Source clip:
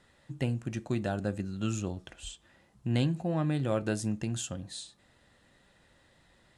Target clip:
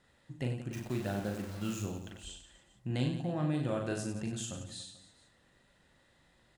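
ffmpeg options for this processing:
ffmpeg -i in.wav -filter_complex "[0:a]asplit=3[link_01][link_02][link_03];[link_01]afade=type=out:start_time=0.71:duration=0.02[link_04];[link_02]acrusher=bits=8:dc=4:mix=0:aa=0.000001,afade=type=in:start_time=0.71:duration=0.02,afade=type=out:start_time=1.81:duration=0.02[link_05];[link_03]afade=type=in:start_time=1.81:duration=0.02[link_06];[link_04][link_05][link_06]amix=inputs=3:normalize=0,asplit=2[link_07][link_08];[link_08]aecho=0:1:40|96|174.4|284.2|437.8:0.631|0.398|0.251|0.158|0.1[link_09];[link_07][link_09]amix=inputs=2:normalize=0,volume=-5.5dB" out.wav

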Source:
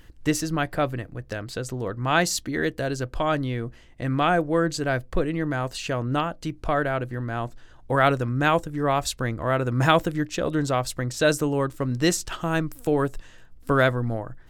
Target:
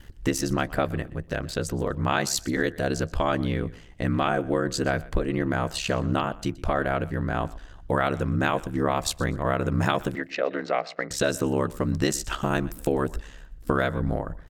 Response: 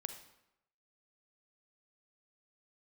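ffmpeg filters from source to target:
-filter_complex "[0:a]acompressor=threshold=-23dB:ratio=6,aeval=exprs='val(0)*sin(2*PI*34*n/s)':channel_layout=same,asettb=1/sr,asplit=3[link_01][link_02][link_03];[link_01]atrim=end=10.154[link_04];[link_02]atrim=start=10.15:end=11.11,asetpts=PTS-STARTPTS,afade=type=in:duration=0.004:curve=qsin,afade=type=out:start_time=0.956:duration=0.004:curve=qsin,highpass=frequency=230:width=0.5412,highpass=frequency=230:width=1.3066,equalizer=frequency=230:width_type=q:width=4:gain=-9,equalizer=frequency=330:width_type=q:width=4:gain=-8,equalizer=frequency=700:width_type=q:width=4:gain=4,equalizer=frequency=1000:width_type=q:width=4:gain=-5,equalizer=frequency=2100:width_type=q:width=4:gain=8,equalizer=frequency=3400:width_type=q:width=4:gain=-9,lowpass=frequency=4200:width=0.5412,lowpass=frequency=4200:width=1.3066[link_05];[link_03]atrim=start=11.106[link_06];[link_04][link_05]acrossfade=duration=0.004:curve1=hsin:curve2=qsin[link_07];[link_07][link_06]acrossfade=duration=0.004:curve1=qsin:curve2=hsin,aecho=1:1:123|246:0.0944|0.0227,volume=5.5dB"

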